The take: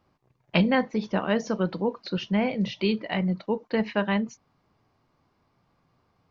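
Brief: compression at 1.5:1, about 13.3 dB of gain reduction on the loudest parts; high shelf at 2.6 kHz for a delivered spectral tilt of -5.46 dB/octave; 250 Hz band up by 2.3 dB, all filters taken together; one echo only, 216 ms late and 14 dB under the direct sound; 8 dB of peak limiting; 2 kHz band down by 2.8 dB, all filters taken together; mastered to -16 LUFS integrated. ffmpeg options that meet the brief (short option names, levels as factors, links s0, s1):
-af "equalizer=f=250:t=o:g=3,equalizer=f=2000:t=o:g=-6.5,highshelf=f=2600:g=6.5,acompressor=threshold=0.002:ratio=1.5,alimiter=level_in=1.41:limit=0.0631:level=0:latency=1,volume=0.708,aecho=1:1:216:0.2,volume=13.3"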